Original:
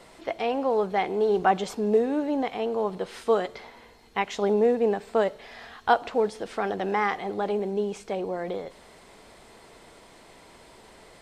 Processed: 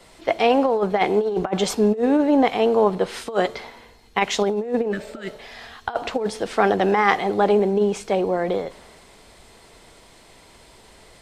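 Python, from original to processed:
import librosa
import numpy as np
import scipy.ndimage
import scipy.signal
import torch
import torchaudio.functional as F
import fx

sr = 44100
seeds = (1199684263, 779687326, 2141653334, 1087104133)

y = fx.over_compress(x, sr, threshold_db=-25.0, ratio=-0.5)
y = fx.spec_repair(y, sr, seeds[0], start_s=4.94, length_s=0.36, low_hz=390.0, high_hz=1200.0, source='after')
y = fx.band_widen(y, sr, depth_pct=40)
y = F.gain(torch.from_numpy(y), 7.5).numpy()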